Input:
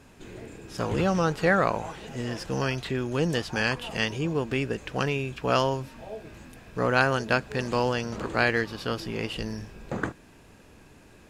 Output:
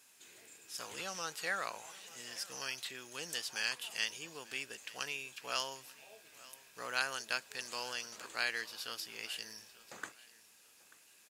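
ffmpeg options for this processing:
ffmpeg -i in.wav -af "aderivative,aecho=1:1:888|1776:0.0944|0.0302,volume=1.5dB" out.wav

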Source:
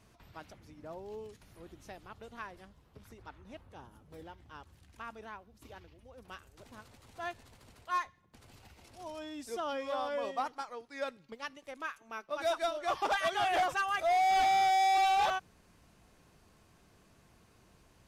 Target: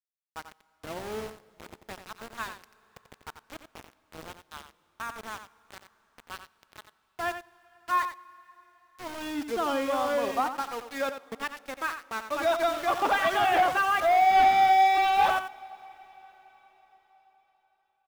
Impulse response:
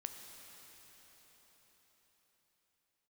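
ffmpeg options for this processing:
-filter_complex "[0:a]lowpass=2200,aemphasis=mode=production:type=75fm,bandreject=frequency=610:width=15,adynamicequalizer=threshold=0.00158:dfrequency=260:dqfactor=2:tfrequency=260:tqfactor=2:attack=5:release=100:ratio=0.375:range=2.5:mode=boostabove:tftype=bell,asplit=2[link_01][link_02];[link_02]alimiter=level_in=4.5dB:limit=-24dB:level=0:latency=1,volume=-4.5dB,volume=2.5dB[link_03];[link_01][link_03]amix=inputs=2:normalize=0,aeval=exprs='val(0)*gte(abs(val(0)),0.015)':channel_layout=same,aecho=1:1:89:0.335,asplit=2[link_04][link_05];[1:a]atrim=start_sample=2205[link_06];[link_05][link_06]afir=irnorm=-1:irlink=0,volume=-12dB[link_07];[link_04][link_07]amix=inputs=2:normalize=0"

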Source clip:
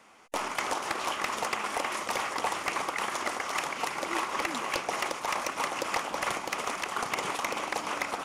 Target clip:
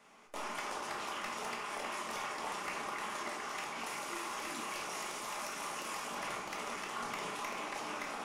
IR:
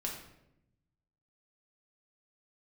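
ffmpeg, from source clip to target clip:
-filter_complex "[0:a]asettb=1/sr,asplit=3[link_01][link_02][link_03];[link_01]atrim=end=3.864[link_04];[link_02]atrim=start=3.86:end=6.15,asetpts=PTS-STARTPTS,afade=type=in:duration=0.004:curve=qsin,afade=type=out:start_time=2.286:duration=0.004:curve=qsin,aemphasis=mode=production:type=cd[link_05];[link_03]atrim=start=6.146[link_06];[link_04][link_05]acrossfade=duration=0.004:curve1=hsin:curve2=qsin[link_07];[link_07][link_06]acrossfade=duration=0.004:curve1=qsin:curve2=hsin,alimiter=level_in=4dB:limit=-24dB:level=0:latency=1:release=30,volume=-4dB[link_08];[1:a]atrim=start_sample=2205,atrim=end_sample=4410[link_09];[link_08][link_09]afir=irnorm=-1:irlink=0,volume=-4.5dB"

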